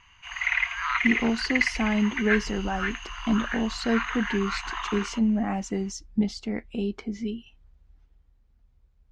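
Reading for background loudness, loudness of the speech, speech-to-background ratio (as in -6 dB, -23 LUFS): -29.0 LUFS, -28.0 LUFS, 1.0 dB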